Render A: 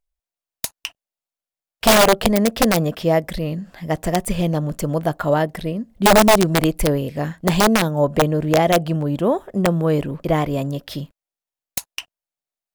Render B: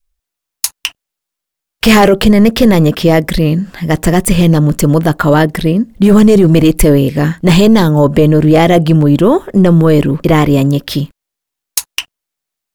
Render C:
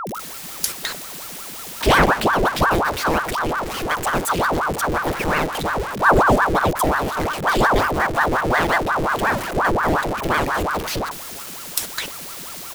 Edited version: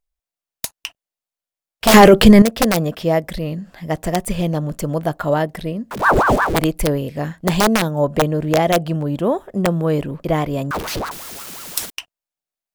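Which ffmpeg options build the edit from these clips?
-filter_complex "[2:a]asplit=2[s0][s1];[0:a]asplit=4[s2][s3][s4][s5];[s2]atrim=end=1.942[s6];[1:a]atrim=start=1.938:end=2.422[s7];[s3]atrim=start=2.418:end=5.912[s8];[s0]atrim=start=5.908:end=6.562[s9];[s4]atrim=start=6.558:end=10.712[s10];[s1]atrim=start=10.708:end=11.902[s11];[s5]atrim=start=11.898[s12];[s6][s7]acrossfade=d=0.004:c1=hsin:c2=hsin[s13];[s13][s8]acrossfade=d=0.004:c1=hsin:c2=hsin[s14];[s14][s9]acrossfade=d=0.004:c1=hsin:c2=hsin[s15];[s15][s10]acrossfade=d=0.004:c1=hsin:c2=hsin[s16];[s16][s11]acrossfade=d=0.004:c1=hsin:c2=hsin[s17];[s17][s12]acrossfade=d=0.004:c1=hsin:c2=hsin"

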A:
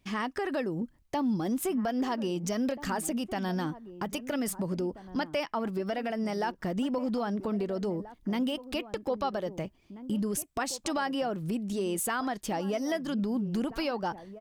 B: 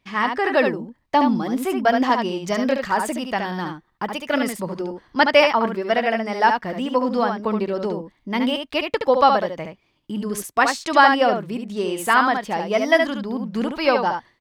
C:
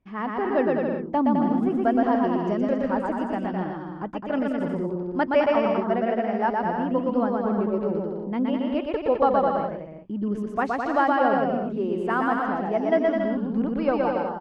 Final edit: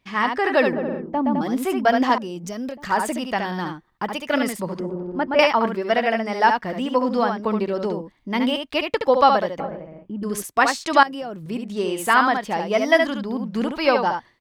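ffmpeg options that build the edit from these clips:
-filter_complex "[2:a]asplit=3[s0][s1][s2];[0:a]asplit=2[s3][s4];[1:a]asplit=6[s5][s6][s7][s8][s9][s10];[s5]atrim=end=0.732[s11];[s0]atrim=start=0.728:end=1.412[s12];[s6]atrim=start=1.408:end=2.182[s13];[s3]atrim=start=2.178:end=2.842[s14];[s7]atrim=start=2.838:end=4.802[s15];[s1]atrim=start=4.798:end=5.392[s16];[s8]atrim=start=5.388:end=9.602[s17];[s2]atrim=start=9.598:end=10.232[s18];[s9]atrim=start=10.228:end=11.032[s19];[s4]atrim=start=11.028:end=11.462[s20];[s10]atrim=start=11.458[s21];[s11][s12]acrossfade=d=0.004:c1=hsin:c2=hsin[s22];[s22][s13]acrossfade=d=0.004:c1=hsin:c2=hsin[s23];[s23][s14]acrossfade=d=0.004:c1=hsin:c2=hsin[s24];[s24][s15]acrossfade=d=0.004:c1=hsin:c2=hsin[s25];[s25][s16]acrossfade=d=0.004:c1=hsin:c2=hsin[s26];[s26][s17]acrossfade=d=0.004:c1=hsin:c2=hsin[s27];[s27][s18]acrossfade=d=0.004:c1=hsin:c2=hsin[s28];[s28][s19]acrossfade=d=0.004:c1=hsin:c2=hsin[s29];[s29][s20]acrossfade=d=0.004:c1=hsin:c2=hsin[s30];[s30][s21]acrossfade=d=0.004:c1=hsin:c2=hsin"

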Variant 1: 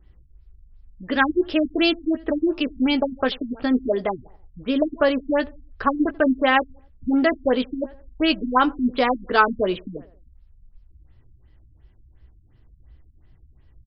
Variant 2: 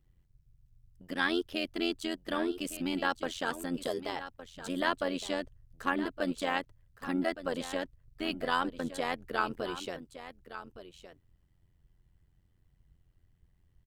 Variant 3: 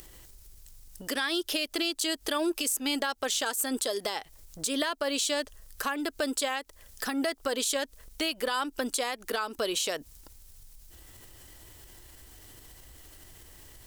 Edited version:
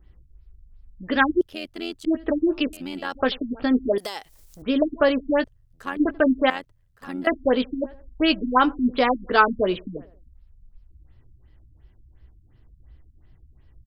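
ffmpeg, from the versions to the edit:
-filter_complex "[1:a]asplit=4[s0][s1][s2][s3];[0:a]asplit=6[s4][s5][s6][s7][s8][s9];[s4]atrim=end=1.412[s10];[s0]atrim=start=1.408:end=2.052[s11];[s5]atrim=start=2.048:end=2.732[s12];[s1]atrim=start=2.728:end=3.152[s13];[s6]atrim=start=3.148:end=3.982[s14];[2:a]atrim=start=3.978:end=4.622[s15];[s7]atrim=start=4.618:end=5.442[s16];[s2]atrim=start=5.438:end=5.972[s17];[s8]atrim=start=5.968:end=6.502[s18];[s3]atrim=start=6.498:end=7.272[s19];[s9]atrim=start=7.268[s20];[s10][s11]acrossfade=d=0.004:c1=hsin:c2=hsin[s21];[s21][s12]acrossfade=d=0.004:c1=hsin:c2=hsin[s22];[s22][s13]acrossfade=d=0.004:c1=hsin:c2=hsin[s23];[s23][s14]acrossfade=d=0.004:c1=hsin:c2=hsin[s24];[s24][s15]acrossfade=d=0.004:c1=hsin:c2=hsin[s25];[s25][s16]acrossfade=d=0.004:c1=hsin:c2=hsin[s26];[s26][s17]acrossfade=d=0.004:c1=hsin:c2=hsin[s27];[s27][s18]acrossfade=d=0.004:c1=hsin:c2=hsin[s28];[s28][s19]acrossfade=d=0.004:c1=hsin:c2=hsin[s29];[s29][s20]acrossfade=d=0.004:c1=hsin:c2=hsin"

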